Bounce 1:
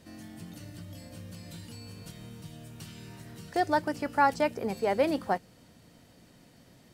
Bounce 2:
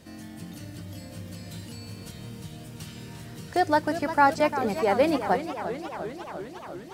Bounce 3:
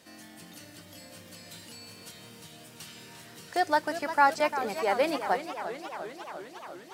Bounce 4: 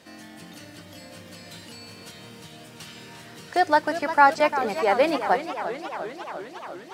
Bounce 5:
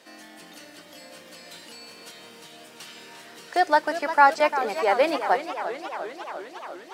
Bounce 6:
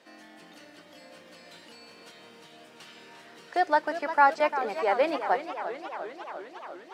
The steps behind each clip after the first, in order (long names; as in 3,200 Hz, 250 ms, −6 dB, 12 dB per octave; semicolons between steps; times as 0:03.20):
feedback echo with a swinging delay time 352 ms, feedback 74%, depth 138 cents, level −11 dB; level +4 dB
high-pass filter 720 Hz 6 dB per octave
high-shelf EQ 6,600 Hz −9.5 dB; level +6 dB
high-pass filter 320 Hz 12 dB per octave
high-shelf EQ 5,600 Hz −11.5 dB; level −3.5 dB